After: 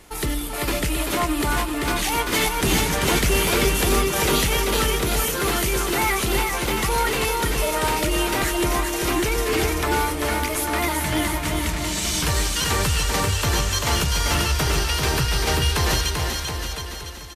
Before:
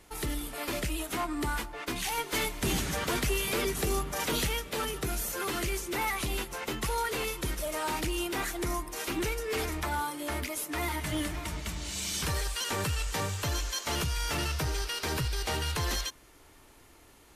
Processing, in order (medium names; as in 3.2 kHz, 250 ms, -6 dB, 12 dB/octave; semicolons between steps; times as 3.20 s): bouncing-ball echo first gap 390 ms, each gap 0.85×, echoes 5; trim +8.5 dB